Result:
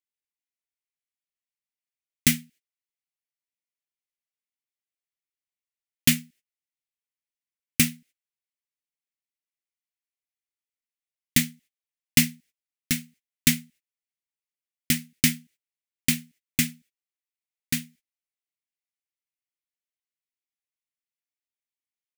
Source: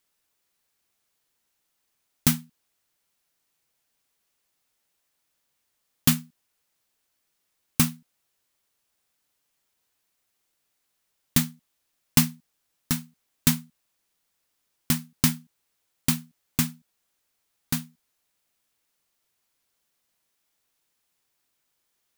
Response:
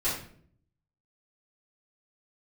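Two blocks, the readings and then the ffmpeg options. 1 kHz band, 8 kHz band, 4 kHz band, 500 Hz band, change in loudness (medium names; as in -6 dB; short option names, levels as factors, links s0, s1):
-11.5 dB, +2.5 dB, +3.5 dB, -2.5 dB, +1.0 dB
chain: -af "agate=range=0.0562:threshold=0.00251:ratio=16:detection=peak,firequalizer=gain_entry='entry(160,0);entry(260,4);entry(1000,-14);entry(2000,12);entry(3900,5);entry(7500,6);entry(15000,3)':delay=0.05:min_phase=1,volume=0.708"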